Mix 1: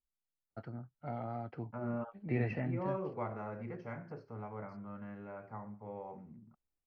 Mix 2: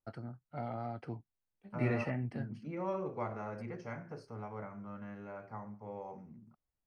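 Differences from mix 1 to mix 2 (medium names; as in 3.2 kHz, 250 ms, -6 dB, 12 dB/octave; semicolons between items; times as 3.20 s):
first voice: entry -0.50 s; master: remove distance through air 220 m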